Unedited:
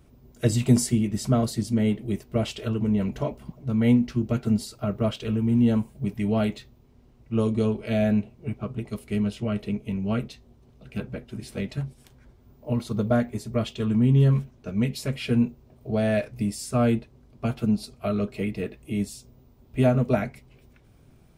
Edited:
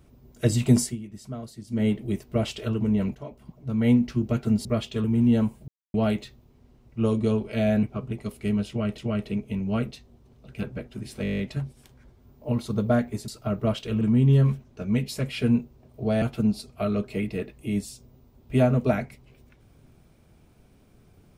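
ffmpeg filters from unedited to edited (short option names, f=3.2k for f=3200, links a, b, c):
-filter_complex "[0:a]asplit=21[a][b][c][d][e][f][g][h][i][j][k][l][m][n][o][p][q][r][s][t][u];[a]atrim=end=0.97,asetpts=PTS-STARTPTS,afade=t=out:st=0.8:d=0.17:silence=0.199526[v];[b]atrim=start=0.97:end=1.67,asetpts=PTS-STARTPTS,volume=-14dB[w];[c]atrim=start=1.67:end=3.15,asetpts=PTS-STARTPTS,afade=t=in:d=0.17:silence=0.199526,afade=t=out:st=1.476:d=0.004:c=hsin:silence=0.188365[x];[d]atrim=start=3.15:end=4.652,asetpts=PTS-STARTPTS,afade=t=in:d=0.81:silence=0.188365[y];[e]atrim=start=13.488:end=13.882[z];[f]atrim=start=5.378:end=6.02,asetpts=PTS-STARTPTS,afade=t=out:st=0.638:d=0.004:c=hsin[aa];[g]atrim=start=6.02:end=6.28,asetpts=PTS-STARTPTS,volume=0[ab];[h]atrim=start=6.28:end=8.172,asetpts=PTS-STARTPTS,afade=t=in:d=0.004:c=hsin[ac];[i]atrim=start=8.498:end=9.652[ad];[j]atrim=start=9.348:end=11.622[ae];[k]atrim=start=11.598:end=11.622[af];[l]atrim=start=11.598:end=11.622[ag];[m]atrim=start=11.598:end=11.622[ah];[n]atrim=start=11.598:end=11.622[ai];[o]atrim=start=11.598:end=11.622[aj];[p]atrim=start=11.598:end=11.622[ak];[q]atrim=start=11.598:end=11.622[al];[r]atrim=start=11.598:end=13.492[am];[s]atrim=start=4.648:end=5.382[an];[t]atrim=start=13.878:end=16.092[ao];[u]atrim=start=17.458[ap];[v][w][x][y]concat=n=4:v=0:a=1[aq];[aq][z]acrossfade=d=0.004:c1=hsin:c2=hsin[ar];[aa][ab][ac]concat=n=3:v=0:a=1[as];[ar][as]acrossfade=d=0.004:c1=hsin:c2=hsin[at];[at][ad]acrossfade=d=0.004:c1=hsin:c2=hsin[au];[au][ae]acrossfade=d=0.004:c1=hsin:c2=hsin[av];[av][af]acrossfade=d=0.004:c1=hsin:c2=hsin[aw];[aw][ag]acrossfade=d=0.004:c1=hsin:c2=hsin[ax];[ax][ah]acrossfade=d=0.004:c1=hsin:c2=hsin[ay];[ay][ai]acrossfade=d=0.004:c1=hsin:c2=hsin[az];[az][aj]acrossfade=d=0.004:c1=hsin:c2=hsin[ba];[ba][ak]acrossfade=d=0.004:c1=hsin:c2=hsin[bb];[bb][al]acrossfade=d=0.004:c1=hsin:c2=hsin[bc];[bc][am]acrossfade=d=0.004:c1=hsin:c2=hsin[bd];[bd][an]acrossfade=d=0.004:c1=hsin:c2=hsin[be];[be][ao]acrossfade=d=0.004:c1=hsin:c2=hsin[bf];[bf][ap]acrossfade=d=0.004:c1=hsin:c2=hsin"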